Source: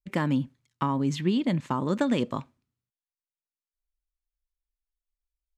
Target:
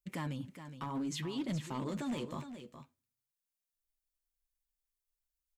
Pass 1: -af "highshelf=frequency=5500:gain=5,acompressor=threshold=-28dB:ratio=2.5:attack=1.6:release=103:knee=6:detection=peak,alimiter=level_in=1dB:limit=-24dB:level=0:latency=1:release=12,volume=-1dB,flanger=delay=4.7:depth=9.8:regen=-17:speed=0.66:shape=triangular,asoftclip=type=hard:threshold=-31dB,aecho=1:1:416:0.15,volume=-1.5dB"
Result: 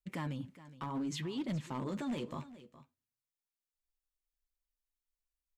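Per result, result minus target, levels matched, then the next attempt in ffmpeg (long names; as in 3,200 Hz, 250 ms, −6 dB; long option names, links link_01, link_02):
echo-to-direct −6 dB; 8,000 Hz band −3.0 dB
-af "highshelf=frequency=5500:gain=5,acompressor=threshold=-28dB:ratio=2.5:attack=1.6:release=103:knee=6:detection=peak,alimiter=level_in=1dB:limit=-24dB:level=0:latency=1:release=12,volume=-1dB,flanger=delay=4.7:depth=9.8:regen=-17:speed=0.66:shape=triangular,asoftclip=type=hard:threshold=-31dB,aecho=1:1:416:0.299,volume=-1.5dB"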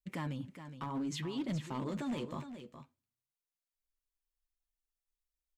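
8,000 Hz band −2.5 dB
-af "highshelf=frequency=5500:gain=12,acompressor=threshold=-28dB:ratio=2.5:attack=1.6:release=103:knee=6:detection=peak,alimiter=level_in=1dB:limit=-24dB:level=0:latency=1:release=12,volume=-1dB,flanger=delay=4.7:depth=9.8:regen=-17:speed=0.66:shape=triangular,asoftclip=type=hard:threshold=-31dB,aecho=1:1:416:0.299,volume=-1.5dB"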